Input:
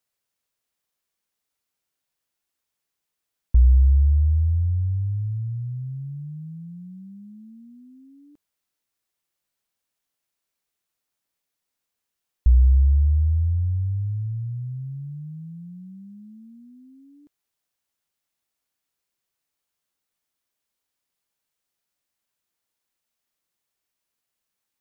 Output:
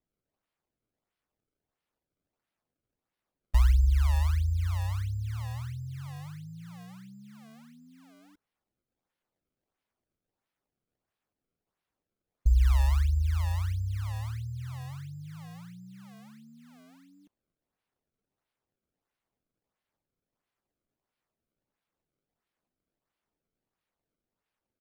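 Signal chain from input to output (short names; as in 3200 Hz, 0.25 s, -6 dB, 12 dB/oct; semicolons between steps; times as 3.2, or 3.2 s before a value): decimation with a swept rate 28×, swing 160% 1.5 Hz; harmoniser -7 st -9 dB; gain -7.5 dB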